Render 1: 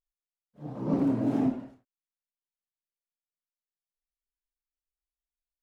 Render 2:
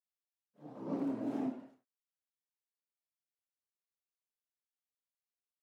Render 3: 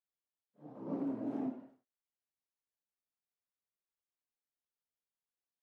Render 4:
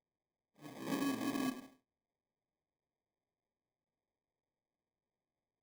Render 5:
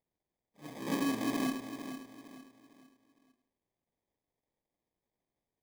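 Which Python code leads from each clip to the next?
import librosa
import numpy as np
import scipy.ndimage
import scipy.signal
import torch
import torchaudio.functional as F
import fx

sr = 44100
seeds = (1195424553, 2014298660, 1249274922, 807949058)

y1 = scipy.signal.sosfilt(scipy.signal.butter(2, 240.0, 'highpass', fs=sr, output='sos'), x)
y1 = F.gain(torch.from_numpy(y1), -8.0).numpy()
y2 = fx.high_shelf(y1, sr, hz=2400.0, db=-11.5)
y2 = F.gain(torch.from_numpy(y2), -1.0).numpy()
y3 = fx.sample_hold(y2, sr, seeds[0], rate_hz=1400.0, jitter_pct=0)
y4 = fx.echo_feedback(y3, sr, ms=455, feedback_pct=35, wet_db=-10.0)
y4 = F.gain(torch.from_numpy(y4), 5.0).numpy()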